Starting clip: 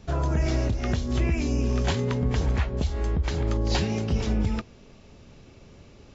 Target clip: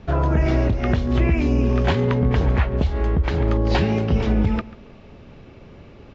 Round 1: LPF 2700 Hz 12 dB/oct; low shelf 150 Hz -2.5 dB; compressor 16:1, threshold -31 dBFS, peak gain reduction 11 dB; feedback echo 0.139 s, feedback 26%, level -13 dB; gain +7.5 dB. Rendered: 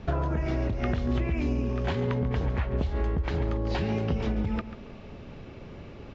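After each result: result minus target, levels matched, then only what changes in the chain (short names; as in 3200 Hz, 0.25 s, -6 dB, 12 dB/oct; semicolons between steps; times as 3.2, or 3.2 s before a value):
compressor: peak gain reduction +11 dB; echo-to-direct +6.5 dB
remove: compressor 16:1, threshold -31 dBFS, peak gain reduction 11 dB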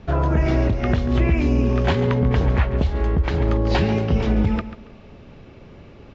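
echo-to-direct +6.5 dB
change: feedback echo 0.139 s, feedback 26%, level -19.5 dB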